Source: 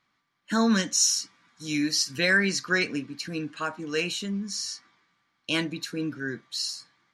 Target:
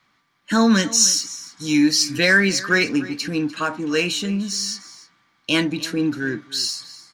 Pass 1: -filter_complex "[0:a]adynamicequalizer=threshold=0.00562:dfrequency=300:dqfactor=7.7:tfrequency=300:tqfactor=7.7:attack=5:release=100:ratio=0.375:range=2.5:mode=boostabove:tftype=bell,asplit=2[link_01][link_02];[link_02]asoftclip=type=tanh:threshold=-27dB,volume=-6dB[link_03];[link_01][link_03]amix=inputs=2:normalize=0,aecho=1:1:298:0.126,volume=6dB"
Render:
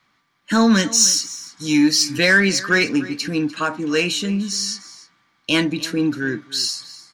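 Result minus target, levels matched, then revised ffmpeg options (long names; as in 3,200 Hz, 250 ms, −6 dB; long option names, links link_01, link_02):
soft clipping: distortion −5 dB
-filter_complex "[0:a]adynamicequalizer=threshold=0.00562:dfrequency=300:dqfactor=7.7:tfrequency=300:tqfactor=7.7:attack=5:release=100:ratio=0.375:range=2.5:mode=boostabove:tftype=bell,asplit=2[link_01][link_02];[link_02]asoftclip=type=tanh:threshold=-38.5dB,volume=-6dB[link_03];[link_01][link_03]amix=inputs=2:normalize=0,aecho=1:1:298:0.126,volume=6dB"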